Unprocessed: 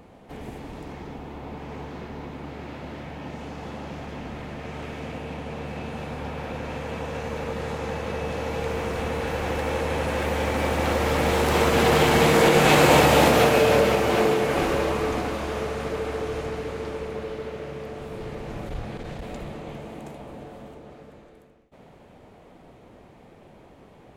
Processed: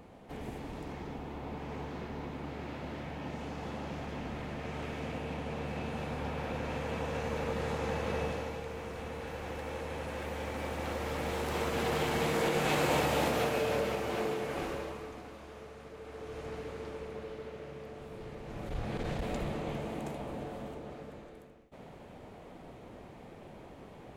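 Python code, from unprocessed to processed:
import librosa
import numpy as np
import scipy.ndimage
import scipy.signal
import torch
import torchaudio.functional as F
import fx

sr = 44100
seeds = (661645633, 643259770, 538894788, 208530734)

y = fx.gain(x, sr, db=fx.line((8.22, -4.0), (8.65, -13.0), (14.67, -13.0), (15.13, -19.5), (15.94, -19.5), (16.53, -10.0), (18.43, -10.0), (19.03, 0.0)))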